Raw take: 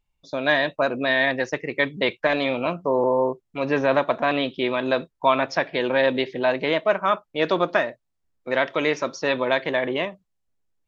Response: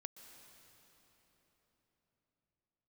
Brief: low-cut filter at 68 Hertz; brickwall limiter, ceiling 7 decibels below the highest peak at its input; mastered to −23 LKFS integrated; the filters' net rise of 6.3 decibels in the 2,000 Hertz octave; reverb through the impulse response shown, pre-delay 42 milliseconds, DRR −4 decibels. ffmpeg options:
-filter_complex "[0:a]highpass=68,equalizer=frequency=2000:width_type=o:gain=7.5,alimiter=limit=-7.5dB:level=0:latency=1,asplit=2[link_01][link_02];[1:a]atrim=start_sample=2205,adelay=42[link_03];[link_02][link_03]afir=irnorm=-1:irlink=0,volume=9dB[link_04];[link_01][link_04]amix=inputs=2:normalize=0,volume=-7dB"

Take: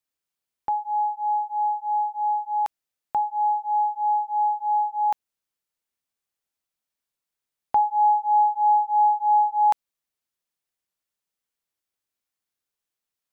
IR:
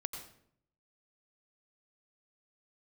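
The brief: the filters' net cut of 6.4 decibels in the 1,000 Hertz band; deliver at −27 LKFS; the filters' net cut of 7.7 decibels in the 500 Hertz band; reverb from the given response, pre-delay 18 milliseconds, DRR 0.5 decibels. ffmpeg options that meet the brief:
-filter_complex "[0:a]equalizer=frequency=500:width_type=o:gain=-9,equalizer=frequency=1000:width_type=o:gain=-4.5,asplit=2[link_01][link_02];[1:a]atrim=start_sample=2205,adelay=18[link_03];[link_02][link_03]afir=irnorm=-1:irlink=0,volume=-0.5dB[link_04];[link_01][link_04]amix=inputs=2:normalize=0,volume=-2.5dB"

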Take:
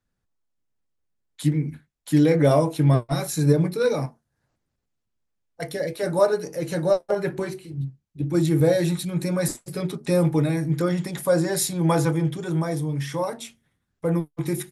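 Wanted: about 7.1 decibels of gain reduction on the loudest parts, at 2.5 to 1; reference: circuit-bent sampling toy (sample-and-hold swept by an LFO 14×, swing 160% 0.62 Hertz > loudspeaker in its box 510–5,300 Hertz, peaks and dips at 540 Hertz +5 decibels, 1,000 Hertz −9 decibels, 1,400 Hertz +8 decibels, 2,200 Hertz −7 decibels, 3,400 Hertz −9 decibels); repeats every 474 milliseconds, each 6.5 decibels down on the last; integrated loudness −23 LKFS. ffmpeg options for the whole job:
ffmpeg -i in.wav -af "acompressor=threshold=-24dB:ratio=2.5,aecho=1:1:474|948|1422|1896|2370|2844:0.473|0.222|0.105|0.0491|0.0231|0.0109,acrusher=samples=14:mix=1:aa=0.000001:lfo=1:lforange=22.4:lforate=0.62,highpass=510,equalizer=frequency=540:width_type=q:width=4:gain=5,equalizer=frequency=1000:width_type=q:width=4:gain=-9,equalizer=frequency=1400:width_type=q:width=4:gain=8,equalizer=frequency=2200:width_type=q:width=4:gain=-7,equalizer=frequency=3400:width_type=q:width=4:gain=-9,lowpass=frequency=5300:width=0.5412,lowpass=frequency=5300:width=1.3066,volume=7.5dB" out.wav

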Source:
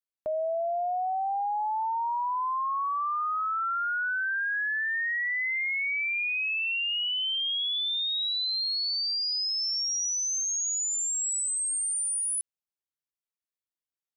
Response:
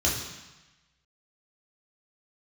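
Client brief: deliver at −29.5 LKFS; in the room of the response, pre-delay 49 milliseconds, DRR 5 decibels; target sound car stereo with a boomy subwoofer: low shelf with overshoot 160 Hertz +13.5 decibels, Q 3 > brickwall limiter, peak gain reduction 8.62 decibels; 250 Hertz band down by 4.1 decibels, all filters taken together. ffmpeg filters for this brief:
-filter_complex "[0:a]equalizer=frequency=250:width_type=o:gain=-6.5,asplit=2[link_01][link_02];[1:a]atrim=start_sample=2205,adelay=49[link_03];[link_02][link_03]afir=irnorm=-1:irlink=0,volume=-16.5dB[link_04];[link_01][link_04]amix=inputs=2:normalize=0,lowshelf=frequency=160:width_type=q:width=3:gain=13.5,volume=-0.5dB,alimiter=level_in=2dB:limit=-24dB:level=0:latency=1,volume=-2dB"

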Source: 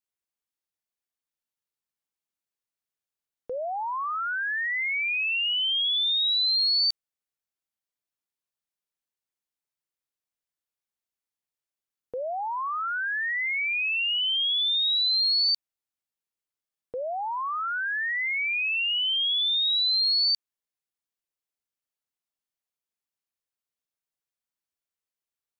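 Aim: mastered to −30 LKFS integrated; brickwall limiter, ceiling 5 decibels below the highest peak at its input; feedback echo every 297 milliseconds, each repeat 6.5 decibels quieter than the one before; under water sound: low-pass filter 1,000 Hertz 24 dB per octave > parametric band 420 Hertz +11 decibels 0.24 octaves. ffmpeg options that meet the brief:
ffmpeg -i in.wav -af "alimiter=level_in=0.5dB:limit=-24dB:level=0:latency=1,volume=-0.5dB,lowpass=frequency=1000:width=0.5412,lowpass=frequency=1000:width=1.3066,equalizer=frequency=420:width_type=o:width=0.24:gain=11,aecho=1:1:297|594|891|1188|1485|1782:0.473|0.222|0.105|0.0491|0.0231|0.0109,volume=4.5dB" out.wav

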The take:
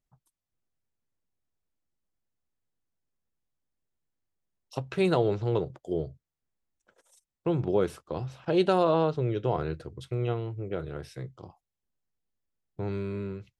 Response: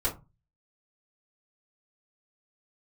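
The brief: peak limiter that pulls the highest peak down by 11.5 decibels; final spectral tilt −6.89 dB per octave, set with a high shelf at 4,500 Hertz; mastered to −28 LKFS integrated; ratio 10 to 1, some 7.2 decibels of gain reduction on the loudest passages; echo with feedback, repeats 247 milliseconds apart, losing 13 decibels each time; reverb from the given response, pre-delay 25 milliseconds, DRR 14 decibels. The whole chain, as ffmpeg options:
-filter_complex "[0:a]highshelf=frequency=4500:gain=7.5,acompressor=threshold=-26dB:ratio=10,alimiter=level_in=2.5dB:limit=-24dB:level=0:latency=1,volume=-2.5dB,aecho=1:1:247|494|741:0.224|0.0493|0.0108,asplit=2[link_01][link_02];[1:a]atrim=start_sample=2205,adelay=25[link_03];[link_02][link_03]afir=irnorm=-1:irlink=0,volume=-21.5dB[link_04];[link_01][link_04]amix=inputs=2:normalize=0,volume=9dB"

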